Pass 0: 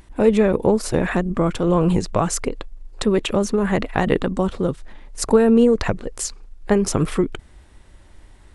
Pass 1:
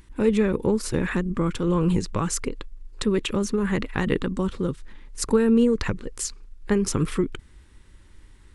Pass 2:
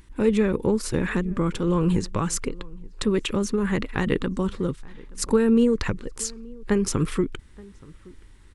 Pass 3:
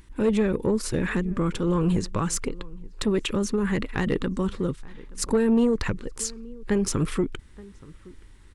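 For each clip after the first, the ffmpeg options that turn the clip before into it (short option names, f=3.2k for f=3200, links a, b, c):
-af "equalizer=f=680:t=o:w=0.54:g=-15,volume=-3dB"
-filter_complex "[0:a]asplit=2[a][b];[b]adelay=874.6,volume=-23dB,highshelf=f=4k:g=-19.7[c];[a][c]amix=inputs=2:normalize=0"
-af "asoftclip=type=tanh:threshold=-13.5dB"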